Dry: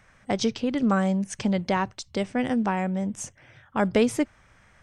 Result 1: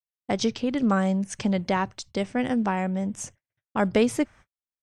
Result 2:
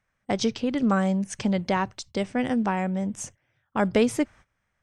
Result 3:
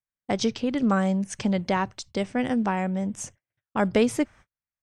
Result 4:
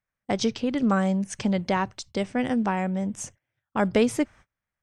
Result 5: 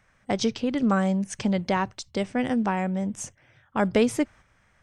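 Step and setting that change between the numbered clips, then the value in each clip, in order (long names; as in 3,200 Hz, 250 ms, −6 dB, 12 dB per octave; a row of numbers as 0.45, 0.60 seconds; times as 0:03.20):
noise gate, range: −56, −19, −44, −31, −6 decibels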